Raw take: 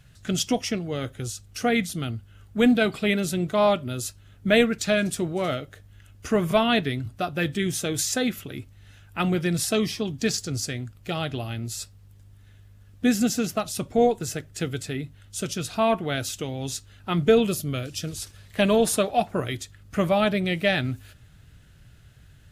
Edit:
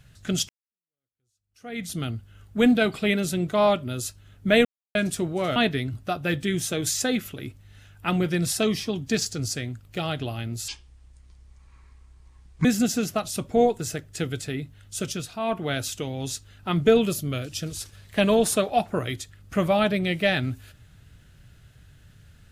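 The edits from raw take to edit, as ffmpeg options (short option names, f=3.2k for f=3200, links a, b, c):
-filter_complex "[0:a]asplit=9[a][b][c][d][e][f][g][h][i];[a]atrim=end=0.49,asetpts=PTS-STARTPTS,afade=t=out:st=0.486:d=0.004:c=hsin[j];[b]atrim=start=0.49:end=4.65,asetpts=PTS-STARTPTS,afade=t=in:d=1.42:c=exp,afade=t=out:st=4.156:d=0.004:c=hsin[k];[c]atrim=start=4.65:end=4.95,asetpts=PTS-STARTPTS,volume=0[l];[d]atrim=start=4.95:end=5.562,asetpts=PTS-STARTPTS,afade=t=in:d=0.004:c=hsin[m];[e]atrim=start=6.678:end=11.804[n];[f]atrim=start=11.8:end=13.06,asetpts=PTS-STARTPTS,asetrate=28224,aresample=44100[o];[g]atrim=start=13.056:end=15.77,asetpts=PTS-STARTPTS,afade=t=out:st=2.464:d=0.25:silence=0.375837[p];[h]atrim=start=15.77:end=15.81,asetpts=PTS-STARTPTS,volume=-8.5dB[q];[i]atrim=start=15.81,asetpts=PTS-STARTPTS,afade=t=in:d=0.25:silence=0.375837[r];[j][k][l][m]concat=n=4:v=0:a=1[s];[s][n]acrossfade=d=0.004:c1=hsin:c2=hsin[t];[t][o]acrossfade=d=0.004:c1=hsin:c2=hsin[u];[p][q][r]concat=n=3:v=0:a=1[v];[u][v]acrossfade=d=0.004:c1=hsin:c2=hsin"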